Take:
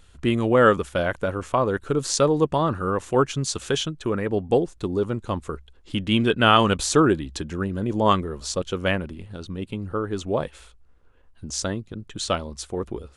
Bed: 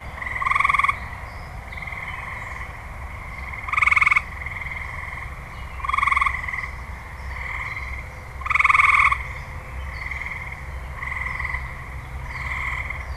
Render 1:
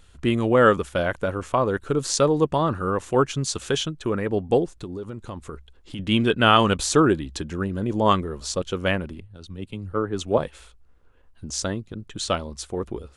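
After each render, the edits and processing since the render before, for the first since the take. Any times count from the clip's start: 4.76–5.99 s: compression 5:1, threshold -30 dBFS; 9.20–10.38 s: three bands expanded up and down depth 100%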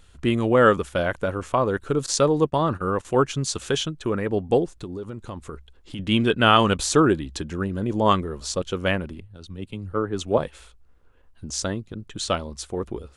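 2.06–3.05 s: gate -32 dBFS, range -16 dB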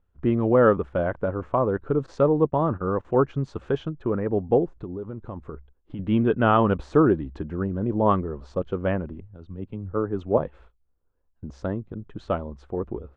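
gate -46 dBFS, range -16 dB; low-pass 1.1 kHz 12 dB/octave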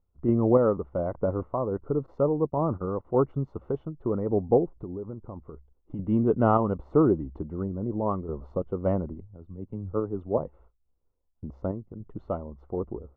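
random-step tremolo; Savitzky-Golay filter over 65 samples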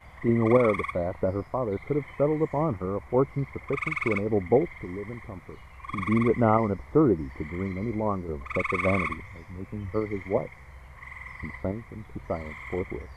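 add bed -14 dB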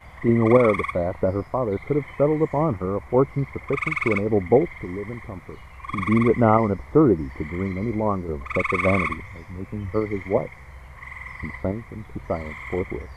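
trim +4.5 dB

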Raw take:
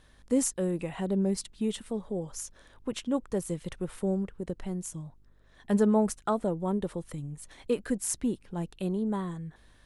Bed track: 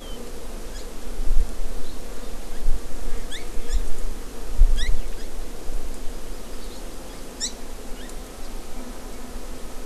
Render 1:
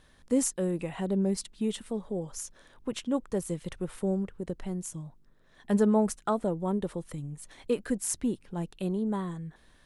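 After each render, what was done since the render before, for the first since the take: de-hum 50 Hz, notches 2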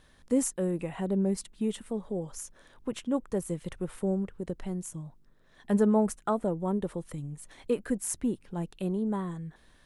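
dynamic bell 4.5 kHz, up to -6 dB, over -55 dBFS, Q 0.95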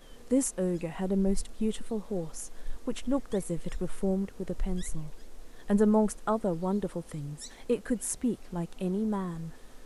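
add bed track -17 dB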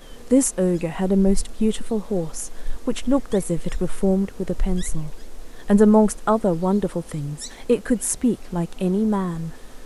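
trim +9.5 dB

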